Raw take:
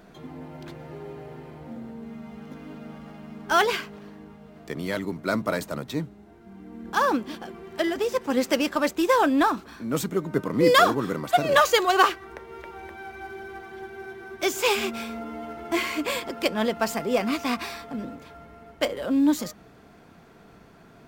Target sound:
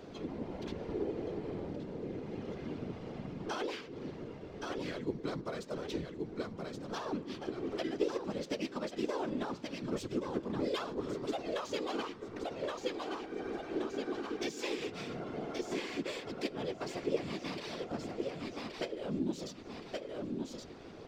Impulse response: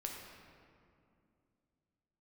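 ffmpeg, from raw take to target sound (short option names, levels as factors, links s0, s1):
-filter_complex "[0:a]equalizer=f=5400:w=0.64:g=8.5,aecho=1:1:1123|2246|3369:0.316|0.0822|0.0214,acompressor=threshold=0.0126:ratio=4,equalizer=f=400:t=o:w=0.67:g=10,equalizer=f=1600:t=o:w=0.67:g=-3,equalizer=f=10000:t=o:w=0.67:g=-5,adynamicsmooth=sensitivity=7:basefreq=7900,asplit=2[s0][s1];[1:a]atrim=start_sample=2205,afade=t=out:st=0.32:d=0.01,atrim=end_sample=14553,lowshelf=f=460:g=4[s2];[s1][s2]afir=irnorm=-1:irlink=0,volume=0.188[s3];[s0][s3]amix=inputs=2:normalize=0,afftfilt=real='hypot(re,im)*cos(2*PI*random(0))':imag='hypot(re,im)*sin(2*PI*random(1))':win_size=512:overlap=0.75,asplit=3[s4][s5][s6];[s5]asetrate=29433,aresample=44100,atempo=1.49831,volume=0.2[s7];[s6]asetrate=35002,aresample=44100,atempo=1.25992,volume=0.562[s8];[s4][s7][s8]amix=inputs=3:normalize=0,volume=1.12"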